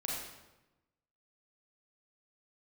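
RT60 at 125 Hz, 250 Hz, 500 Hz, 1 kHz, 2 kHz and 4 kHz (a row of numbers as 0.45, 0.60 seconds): 1.3, 1.2, 1.0, 1.0, 0.90, 0.80 seconds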